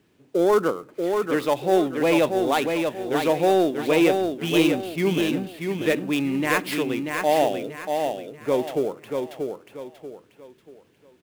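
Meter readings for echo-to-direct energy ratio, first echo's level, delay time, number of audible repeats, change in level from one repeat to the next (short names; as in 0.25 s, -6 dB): -4.5 dB, -5.0 dB, 0.636 s, 4, -9.5 dB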